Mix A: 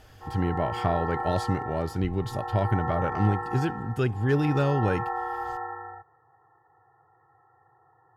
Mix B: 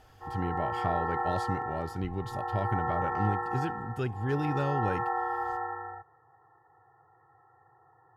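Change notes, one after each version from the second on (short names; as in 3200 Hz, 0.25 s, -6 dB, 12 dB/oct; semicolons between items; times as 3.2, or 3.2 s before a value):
speech -6.5 dB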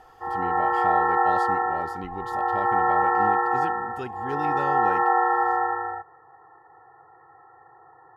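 background +10.5 dB; master: add bell 110 Hz -13.5 dB 0.81 oct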